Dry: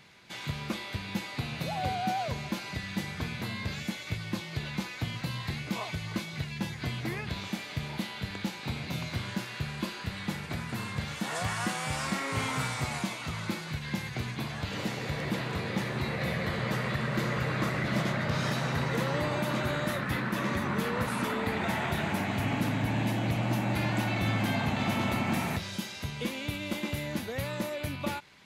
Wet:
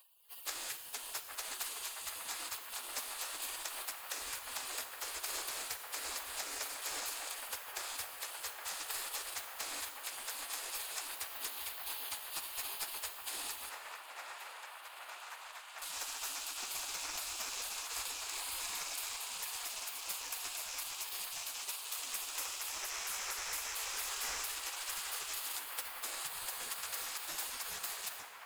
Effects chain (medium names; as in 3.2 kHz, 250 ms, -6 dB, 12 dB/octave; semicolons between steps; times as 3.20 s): comb filter that takes the minimum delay 0.53 ms; compression 4:1, threshold -34 dBFS, peak gain reduction 8 dB; resonant high shelf 4.7 kHz +7.5 dB, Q 3; spectral gate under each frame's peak -25 dB weak; 13.69–15.82 s: three-band isolator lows -19 dB, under 580 Hz, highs -15 dB, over 2.5 kHz; feedback echo behind a band-pass 817 ms, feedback 71%, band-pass 1.1 kHz, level -4 dB; plate-style reverb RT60 1.5 s, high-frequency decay 0.9×, DRR 8.5 dB; trim +7.5 dB